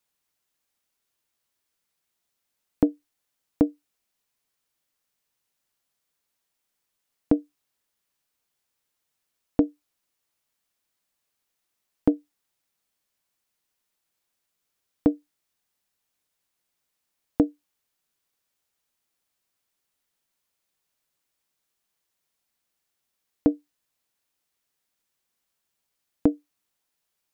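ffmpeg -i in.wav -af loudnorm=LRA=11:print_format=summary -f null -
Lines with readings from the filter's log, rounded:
Input Integrated:    -27.4 LUFS
Input True Peak:      -6.1 dBTP
Input LRA:             3.0 LU
Input Threshold:     -38.2 LUFS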